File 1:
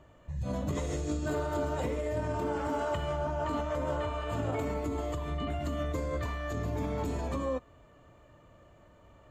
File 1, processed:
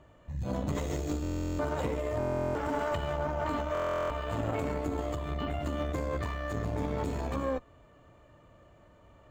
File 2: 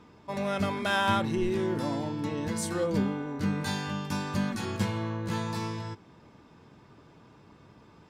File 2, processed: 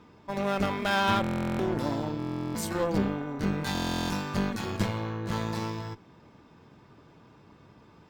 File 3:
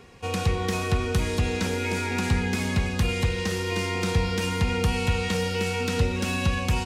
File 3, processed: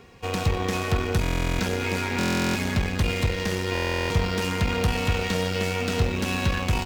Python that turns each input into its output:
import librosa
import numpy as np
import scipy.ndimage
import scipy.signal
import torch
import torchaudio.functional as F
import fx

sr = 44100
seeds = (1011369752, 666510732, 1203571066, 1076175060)

y = fx.cheby_harmonics(x, sr, harmonics=(8,), levels_db=(-19,), full_scale_db=-10.5)
y = fx.buffer_glitch(y, sr, at_s=(1.22, 2.18, 3.73), block=1024, repeats=15)
y = np.interp(np.arange(len(y)), np.arange(len(y))[::2], y[::2])